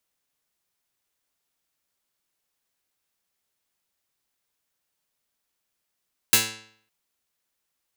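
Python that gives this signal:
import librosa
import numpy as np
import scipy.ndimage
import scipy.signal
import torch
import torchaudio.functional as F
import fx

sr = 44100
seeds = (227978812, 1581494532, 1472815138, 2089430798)

y = fx.pluck(sr, length_s=0.56, note=45, decay_s=0.6, pick=0.18, brightness='medium')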